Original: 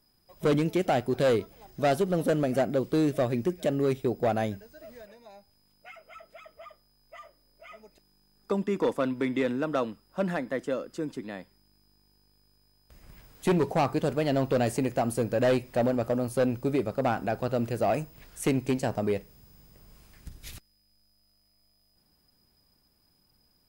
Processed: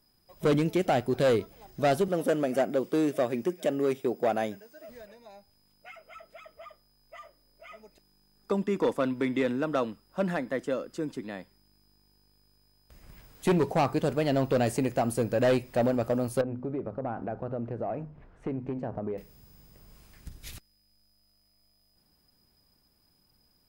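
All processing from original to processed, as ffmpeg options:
-filter_complex "[0:a]asettb=1/sr,asplit=3[a][b][c];[a]atrim=end=2.084[d];[b]atrim=start=2.08:end=4.89,asetpts=PTS-STARTPTS,afade=t=in:d=0.004:c=qsin,afade=t=out:st=2.806:d=0.004:c=qsin,highpass=230,bandreject=f=4.1k:w=8.5[e];[c]atrim=start=4.886[f];[d][e]acrossfade=d=0.004:c1=hsin:c2=qsin[g];[g][f]acrossfade=d=0.004:c1=qsin:c2=hsin,asettb=1/sr,asplit=3[h][i][j];[h]atrim=end=16.414[k];[i]atrim=start=16.41:end=19.18,asetpts=PTS-STARTPTS,afade=t=in:d=0.004:c=qsin,afade=t=out:st=2.766:d=0.004:c=qsin,lowpass=1.2k,bandreject=f=50:t=h:w=6,bandreject=f=100:t=h:w=6,bandreject=f=150:t=h:w=6,bandreject=f=200:t=h:w=6,bandreject=f=250:t=h:w=6,acompressor=threshold=-31dB:ratio=3:attack=3.2:release=140:knee=1:detection=peak[l];[j]atrim=start=19.176[m];[k][l]acrossfade=d=0.004:c1=hsin:c2=qsin[n];[n][m]acrossfade=d=0.004:c1=qsin:c2=hsin"

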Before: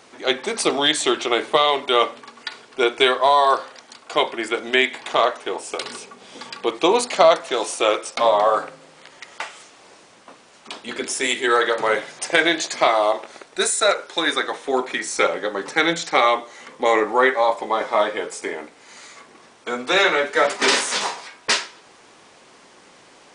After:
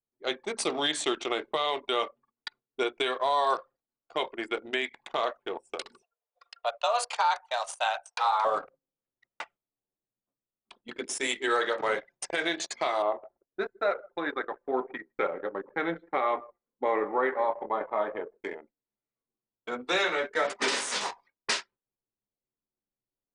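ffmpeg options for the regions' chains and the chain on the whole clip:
-filter_complex "[0:a]asettb=1/sr,asplit=3[a][b][c];[a]atrim=end=6.024[d];[b]atrim=start=6.02:end=8.45,asetpts=PTS-STARTPTS,afade=t=in:d=0.004:c=qsin,afade=t=out:st=2.426:d=0.004:c=qsin,highpass=f=190:w=0.5412,highpass=f=190:w=1.3066,afreqshift=240[e];[c]atrim=start=8.446[f];[d][e]acrossfade=d=0.004:c1=hsin:c2=qsin[g];[g][f]acrossfade=d=0.004:c1=qsin:c2=hsin,asettb=1/sr,asplit=3[h][i][j];[h]atrim=end=13.024[k];[i]atrim=start=13.02:end=18.41,asetpts=PTS-STARTPTS,afade=t=in:d=0.004:c=qsin,afade=t=out:st=5.386:d=0.004:c=qsin,lowpass=1.7k,aecho=1:1:158|316:0.126|0.0277,atrim=end_sample=237699[l];[j]atrim=start=18.406[m];[k][l]acrossfade=d=0.004:c1=hsin:c2=qsin[n];[n][m]acrossfade=d=0.004:c1=qsin:c2=hsin,agate=range=-12dB:threshold=-38dB:ratio=16:detection=peak,anlmdn=158,alimiter=limit=-8dB:level=0:latency=1:release=194,volume=-8dB"

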